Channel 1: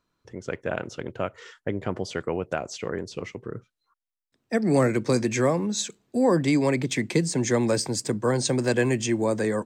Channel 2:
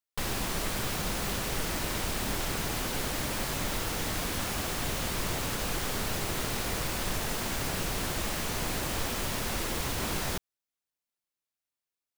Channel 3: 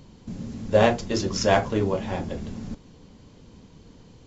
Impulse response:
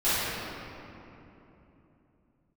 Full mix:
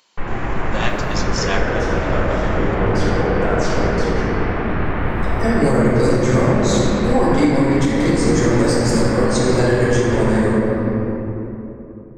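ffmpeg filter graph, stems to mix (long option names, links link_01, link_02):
-filter_complex "[0:a]bandreject=frequency=2500:width=6.3,acompressor=mode=upward:threshold=-28dB:ratio=2.5,flanger=delay=3.8:depth=6.4:regen=60:speed=1.3:shape=sinusoidal,adelay=900,volume=1.5dB,asplit=2[link_01][link_02];[link_02]volume=-4dB[link_03];[1:a]lowpass=frequency=2100:width=0.5412,lowpass=frequency=2100:width=1.3066,volume=2.5dB,asplit=2[link_04][link_05];[link_05]volume=-7.5dB[link_06];[2:a]highpass=1200,volume=2.5dB,asplit=2[link_07][link_08];[link_08]volume=-21.5dB[link_09];[3:a]atrim=start_sample=2205[link_10];[link_03][link_06][link_09]amix=inputs=3:normalize=0[link_11];[link_11][link_10]afir=irnorm=-1:irlink=0[link_12];[link_01][link_04][link_07][link_12]amix=inputs=4:normalize=0,alimiter=limit=-5dB:level=0:latency=1:release=377"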